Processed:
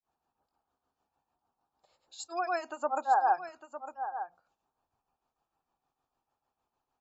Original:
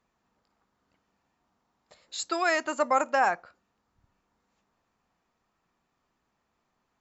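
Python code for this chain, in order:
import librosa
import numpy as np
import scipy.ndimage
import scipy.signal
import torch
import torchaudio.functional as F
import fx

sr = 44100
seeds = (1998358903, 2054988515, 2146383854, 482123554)

y = fx.hum_notches(x, sr, base_hz=60, count=3)
y = fx.granulator(y, sr, seeds[0], grain_ms=232.0, per_s=6.6, spray_ms=100.0, spread_st=0)
y = fx.graphic_eq_31(y, sr, hz=(200, 800, 2000), db=(-10, 10, -11))
y = fx.spec_gate(y, sr, threshold_db=-30, keep='strong')
y = y + 10.0 ** (-11.0 / 20.0) * np.pad(y, (int(905 * sr / 1000.0), 0))[:len(y)]
y = F.gain(torch.from_numpy(y), -6.5).numpy()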